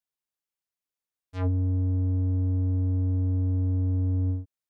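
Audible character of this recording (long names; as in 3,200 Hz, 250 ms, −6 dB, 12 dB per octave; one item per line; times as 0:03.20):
background noise floor −92 dBFS
spectral slope −13.0 dB per octave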